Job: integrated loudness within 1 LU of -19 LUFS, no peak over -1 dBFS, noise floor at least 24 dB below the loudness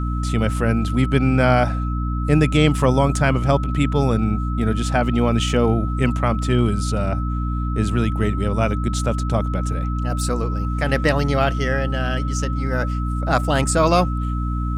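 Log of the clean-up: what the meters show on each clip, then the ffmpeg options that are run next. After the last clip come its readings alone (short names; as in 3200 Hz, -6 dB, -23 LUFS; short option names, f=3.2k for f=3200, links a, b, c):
hum 60 Hz; harmonics up to 300 Hz; hum level -20 dBFS; steady tone 1300 Hz; tone level -31 dBFS; loudness -20.0 LUFS; peak -3.5 dBFS; loudness target -19.0 LUFS
-> -af "bandreject=f=60:t=h:w=4,bandreject=f=120:t=h:w=4,bandreject=f=180:t=h:w=4,bandreject=f=240:t=h:w=4,bandreject=f=300:t=h:w=4"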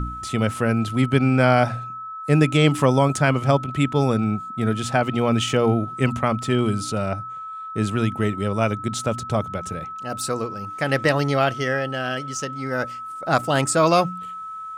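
hum none; steady tone 1300 Hz; tone level -31 dBFS
-> -af "bandreject=f=1.3k:w=30"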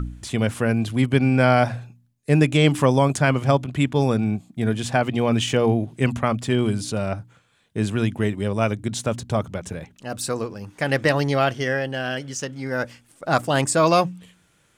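steady tone none; loudness -22.0 LUFS; peak -5.0 dBFS; loudness target -19.0 LUFS
-> -af "volume=3dB"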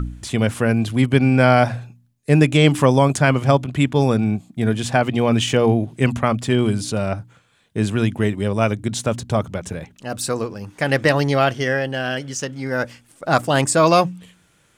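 loudness -19.0 LUFS; peak -2.0 dBFS; noise floor -59 dBFS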